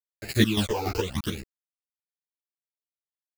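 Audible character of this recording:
a quantiser's noise floor 6 bits, dither none
phaser sweep stages 12, 0.87 Hz, lowest notch 170–1,100 Hz
chopped level 3.5 Hz, depth 65%, duty 50%
a shimmering, thickened sound

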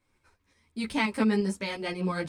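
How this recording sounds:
tremolo saw up 5.7 Hz, depth 45%
a shimmering, thickened sound

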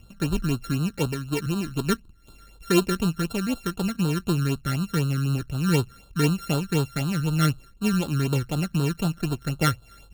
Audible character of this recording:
a buzz of ramps at a fixed pitch in blocks of 32 samples
phaser sweep stages 12, 4 Hz, lowest notch 780–2,100 Hz

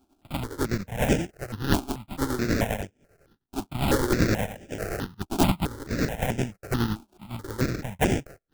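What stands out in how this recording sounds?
a buzz of ramps at a fixed pitch in blocks of 32 samples
tremolo triangle 10 Hz, depth 70%
aliases and images of a low sample rate 1,100 Hz, jitter 20%
notches that jump at a steady rate 4.6 Hz 510–4,200 Hz

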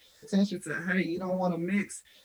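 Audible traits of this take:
phaser sweep stages 4, 0.95 Hz, lowest notch 640–2,700 Hz
a quantiser's noise floor 10 bits, dither none
a shimmering, thickened sound

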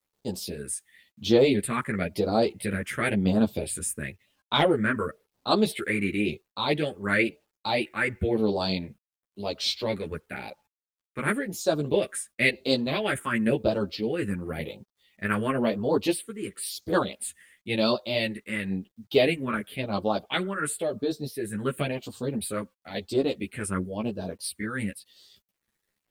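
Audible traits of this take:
phaser sweep stages 4, 0.96 Hz, lowest notch 710–2,000 Hz
a quantiser's noise floor 12 bits, dither none
a shimmering, thickened sound

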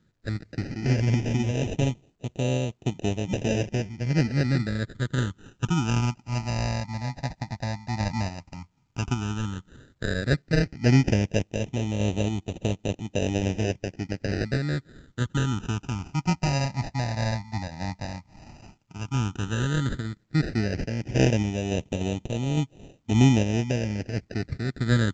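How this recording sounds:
sample-and-hold tremolo 3.5 Hz
aliases and images of a low sample rate 1,100 Hz, jitter 0%
phaser sweep stages 8, 0.1 Hz, lowest notch 410–1,500 Hz
mu-law

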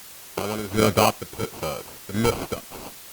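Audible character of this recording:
aliases and images of a low sample rate 1,800 Hz, jitter 0%
chopped level 1.4 Hz, depth 60%, duty 55%
a quantiser's noise floor 8 bits, dither triangular
Opus

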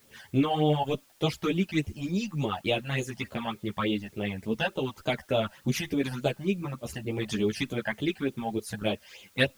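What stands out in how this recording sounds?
phaser sweep stages 12, 3.4 Hz, lowest notch 370–1,800 Hz
a quantiser's noise floor 10 bits, dither triangular
a shimmering, thickened sound

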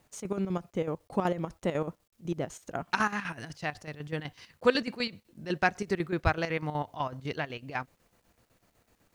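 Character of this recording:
chopped level 8 Hz, depth 65%, duty 60%
a quantiser's noise floor 12 bits, dither none

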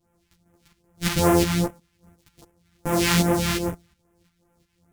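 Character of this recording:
a buzz of ramps at a fixed pitch in blocks of 256 samples
phaser sweep stages 2, 2.5 Hz, lowest notch 470–4,100 Hz
tremolo saw up 2.8 Hz, depth 60%
a shimmering, thickened sound

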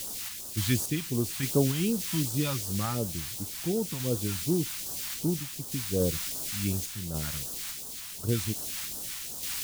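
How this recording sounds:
a quantiser's noise floor 6 bits, dither triangular
sample-and-hold tremolo
phaser sweep stages 2, 2.7 Hz, lowest notch 400–2,100 Hz

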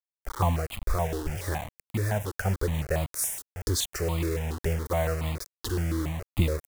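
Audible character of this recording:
a quantiser's noise floor 6 bits, dither none
notches that jump at a steady rate 7.1 Hz 620–1,600 Hz

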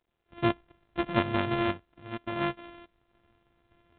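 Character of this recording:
a buzz of ramps at a fixed pitch in blocks of 128 samples
sample-and-hold tremolo, depth 80%
G.726

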